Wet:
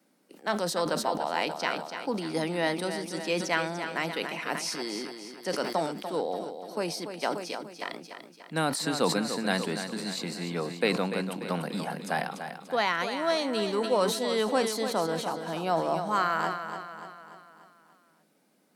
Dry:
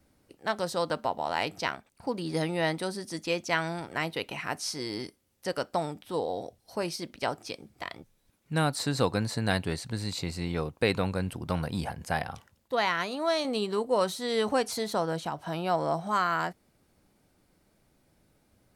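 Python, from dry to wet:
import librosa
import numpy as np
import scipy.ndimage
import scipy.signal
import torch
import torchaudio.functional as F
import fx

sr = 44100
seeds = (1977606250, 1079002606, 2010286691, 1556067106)

y = scipy.signal.sosfilt(scipy.signal.butter(8, 170.0, 'highpass', fs=sr, output='sos'), x)
y = fx.echo_feedback(y, sr, ms=292, feedback_pct=51, wet_db=-9)
y = fx.sustainer(y, sr, db_per_s=68.0)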